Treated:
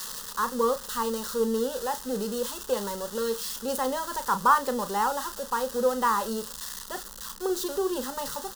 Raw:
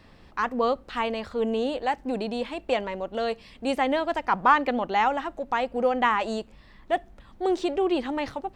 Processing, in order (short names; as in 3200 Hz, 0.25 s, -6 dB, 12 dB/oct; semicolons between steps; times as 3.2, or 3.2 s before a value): switching spikes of -17 dBFS; high shelf 6900 Hz -10 dB; fixed phaser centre 460 Hz, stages 8; doubler 35 ms -10.5 dB